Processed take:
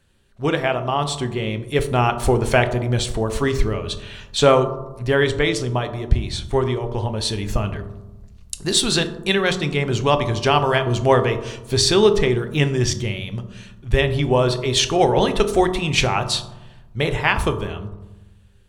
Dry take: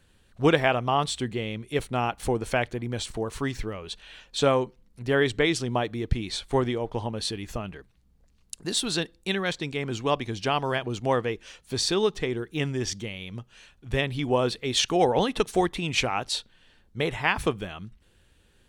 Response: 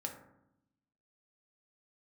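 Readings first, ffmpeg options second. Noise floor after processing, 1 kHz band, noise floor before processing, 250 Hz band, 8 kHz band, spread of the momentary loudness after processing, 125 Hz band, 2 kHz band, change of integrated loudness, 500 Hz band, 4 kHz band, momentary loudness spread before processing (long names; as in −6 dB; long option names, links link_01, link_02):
−47 dBFS, +6.5 dB, −62 dBFS, +6.0 dB, +7.5 dB, 11 LU, +10.0 dB, +6.0 dB, +7.0 dB, +7.5 dB, +7.0 dB, 13 LU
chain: -filter_complex "[0:a]asubboost=boost=2.5:cutoff=110,dynaudnorm=framelen=100:gausssize=21:maxgain=11.5dB,asplit=2[link_01][link_02];[1:a]atrim=start_sample=2205,asetrate=32193,aresample=44100[link_03];[link_02][link_03]afir=irnorm=-1:irlink=0,volume=2dB[link_04];[link_01][link_04]amix=inputs=2:normalize=0,volume=-7dB"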